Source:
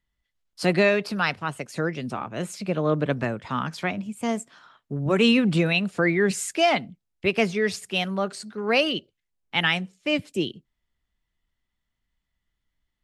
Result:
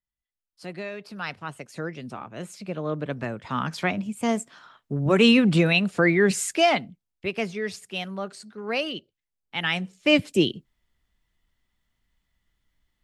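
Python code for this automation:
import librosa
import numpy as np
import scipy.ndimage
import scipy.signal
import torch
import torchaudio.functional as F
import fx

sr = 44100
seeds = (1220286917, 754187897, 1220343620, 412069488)

y = fx.gain(x, sr, db=fx.line((0.89, -15.5), (1.38, -6.0), (3.1, -6.0), (3.75, 2.0), (6.53, 2.0), (7.28, -6.0), (9.59, -6.0), (9.99, 5.5)))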